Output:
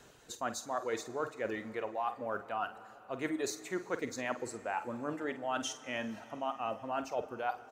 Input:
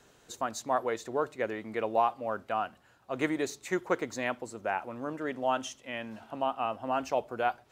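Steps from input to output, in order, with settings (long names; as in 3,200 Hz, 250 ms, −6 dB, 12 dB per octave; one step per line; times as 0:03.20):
reverb reduction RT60 0.78 s
reversed playback
downward compressor, threshold −35 dBFS, peak gain reduction 13.5 dB
reversed playback
double-tracking delay 48 ms −12 dB
dense smooth reverb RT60 4.3 s, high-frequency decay 0.75×, DRR 14 dB
level +2.5 dB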